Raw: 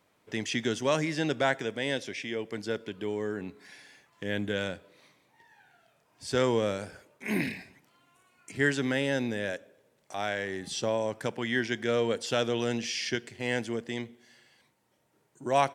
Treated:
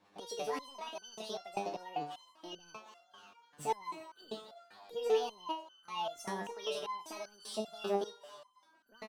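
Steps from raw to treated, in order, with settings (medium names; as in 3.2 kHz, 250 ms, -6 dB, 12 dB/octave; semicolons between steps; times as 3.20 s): median filter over 5 samples; treble shelf 2.6 kHz -9.5 dB; in parallel at -2.5 dB: compression, threshold -42 dBFS, peak gain reduction 20 dB; on the sum: peak limiter -24.5 dBFS, peak gain reduction 11.5 dB; rotary cabinet horn 7 Hz, later 1.1 Hz, at 6.11 s; frequency-shifting echo 473 ms, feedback 47%, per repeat +110 Hz, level -16 dB; speed mistake 45 rpm record played at 78 rpm; resonator arpeggio 5.1 Hz 100–1500 Hz; trim +11 dB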